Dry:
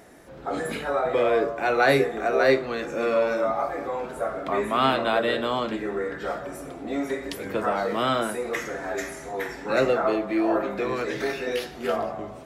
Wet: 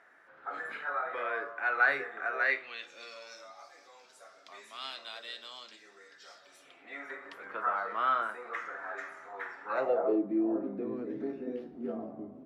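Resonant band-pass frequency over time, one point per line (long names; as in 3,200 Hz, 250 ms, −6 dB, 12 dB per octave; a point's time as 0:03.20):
resonant band-pass, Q 3
0:02.33 1,500 Hz
0:03.15 5,300 Hz
0:06.34 5,300 Hz
0:07.19 1,300 Hz
0:09.67 1,300 Hz
0:10.27 260 Hz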